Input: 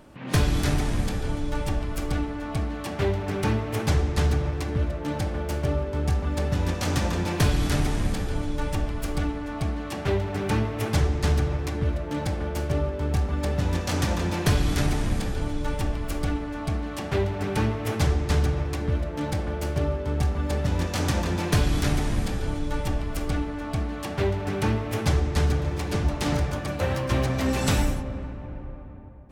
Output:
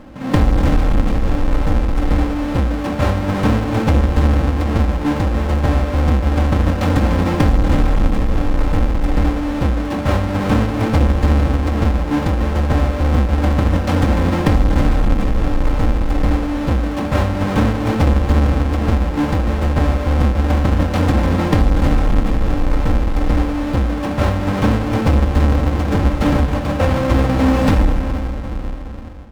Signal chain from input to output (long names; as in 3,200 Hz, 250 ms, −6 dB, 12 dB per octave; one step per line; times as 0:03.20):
each half-wave held at its own peak
low-pass filter 1,600 Hz 6 dB per octave
notch filter 400 Hz, Q 12
comb filter 3.8 ms, depth 46%
downward compressor 2.5 to 1, threshold −17 dBFS, peak gain reduction 4.5 dB
level +6.5 dB